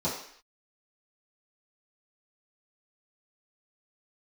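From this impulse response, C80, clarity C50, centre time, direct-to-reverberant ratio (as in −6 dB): 8.0 dB, 4.5 dB, 39 ms, −11.5 dB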